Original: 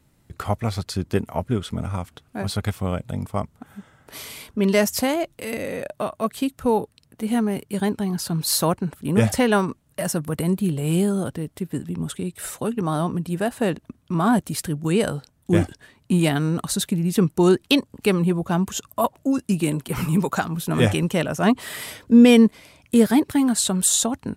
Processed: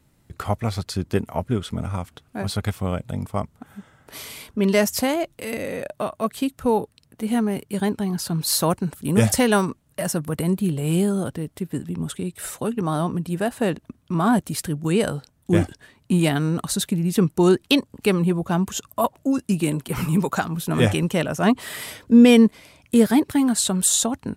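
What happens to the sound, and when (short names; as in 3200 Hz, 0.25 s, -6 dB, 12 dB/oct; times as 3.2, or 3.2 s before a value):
8.7–9.69 tone controls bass +1 dB, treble +7 dB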